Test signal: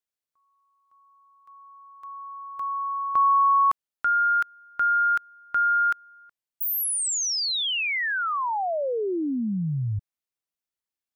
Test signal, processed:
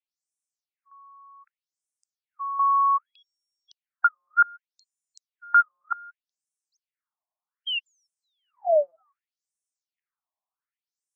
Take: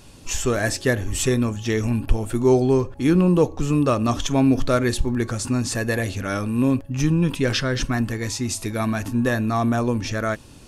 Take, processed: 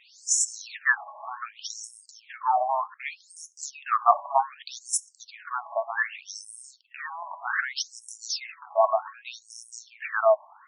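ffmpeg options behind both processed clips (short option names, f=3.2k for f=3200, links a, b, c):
-af "acontrast=67,equalizer=f=3.5k:t=o:w=1.3:g=-13,afftfilt=real='re*between(b*sr/1024,800*pow(7500/800,0.5+0.5*sin(2*PI*0.65*pts/sr))/1.41,800*pow(7500/800,0.5+0.5*sin(2*PI*0.65*pts/sr))*1.41)':imag='im*between(b*sr/1024,800*pow(7500/800,0.5+0.5*sin(2*PI*0.65*pts/sr))/1.41,800*pow(7500/800,0.5+0.5*sin(2*PI*0.65*pts/sr))*1.41)':win_size=1024:overlap=0.75,volume=4dB"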